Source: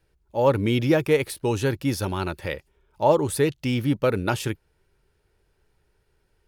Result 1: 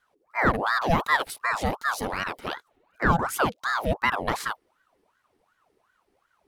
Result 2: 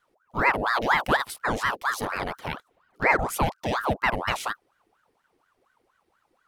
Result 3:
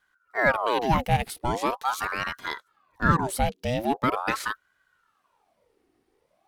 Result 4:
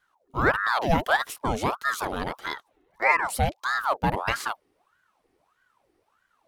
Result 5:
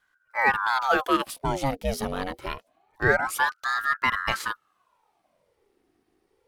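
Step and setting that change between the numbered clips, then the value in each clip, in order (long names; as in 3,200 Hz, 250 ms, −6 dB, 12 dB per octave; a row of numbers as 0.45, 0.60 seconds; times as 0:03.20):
ring modulator whose carrier an LFO sweeps, at: 2.7, 4.2, 0.42, 1.6, 0.25 Hertz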